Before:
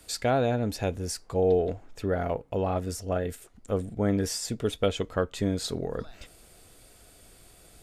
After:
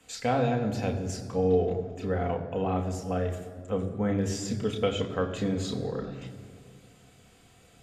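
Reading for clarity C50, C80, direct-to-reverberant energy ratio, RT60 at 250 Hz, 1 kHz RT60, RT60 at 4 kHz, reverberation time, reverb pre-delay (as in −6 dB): 10.0 dB, 11.0 dB, 2.0 dB, 2.7 s, 1.9 s, 1.3 s, 2.0 s, 3 ms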